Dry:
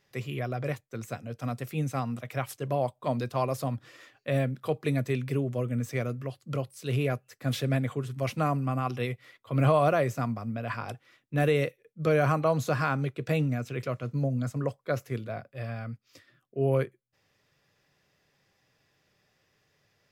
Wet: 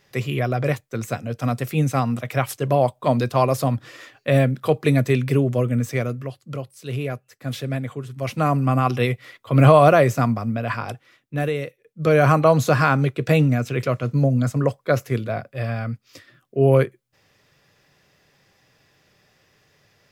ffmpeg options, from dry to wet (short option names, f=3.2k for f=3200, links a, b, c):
-af "volume=31.5dB,afade=t=out:st=5.53:d=1.04:silence=0.354813,afade=t=in:st=8.15:d=0.59:silence=0.334965,afade=t=out:st=10.28:d=1.37:silence=0.237137,afade=t=in:st=11.65:d=0.71:silence=0.251189"